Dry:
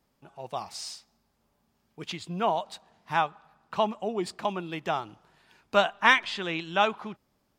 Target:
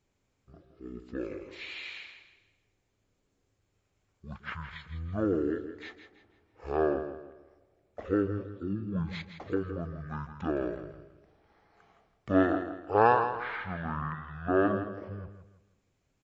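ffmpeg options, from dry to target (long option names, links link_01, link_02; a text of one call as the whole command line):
ffmpeg -i in.wav -af "asetrate=20595,aresample=44100,aecho=1:1:164|328|492|656:0.316|0.108|0.0366|0.0124,volume=-3.5dB" out.wav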